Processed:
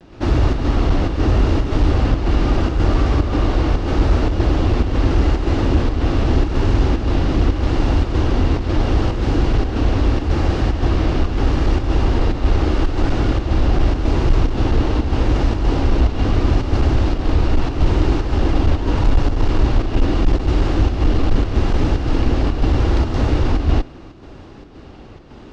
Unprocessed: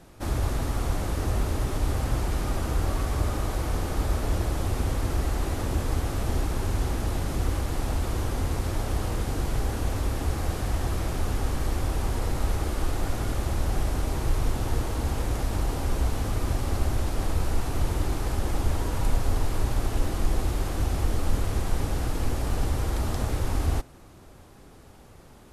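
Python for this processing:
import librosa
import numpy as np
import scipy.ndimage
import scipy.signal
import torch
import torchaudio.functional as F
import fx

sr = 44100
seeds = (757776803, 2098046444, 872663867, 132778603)

p1 = scipy.signal.sosfilt(scipy.signal.butter(4, 5100.0, 'lowpass', fs=sr, output='sos'), x)
p2 = fx.low_shelf(p1, sr, hz=72.0, db=4.0)
p3 = fx.cheby_harmonics(p2, sr, harmonics=(5,), levels_db=(-27,), full_scale_db=-7.5)
p4 = fx.clip_asym(p3, sr, top_db=-15.5, bottom_db=-13.0)
p5 = fx.volume_shaper(p4, sr, bpm=112, per_beat=1, depth_db=-17, release_ms=115.0, shape='slow start')
p6 = p4 + (p5 * 10.0 ** (3.0 / 20.0))
p7 = fx.vibrato(p6, sr, rate_hz=0.79, depth_cents=62.0)
y = fx.small_body(p7, sr, hz=(300.0, 2800.0), ring_ms=20, db=7)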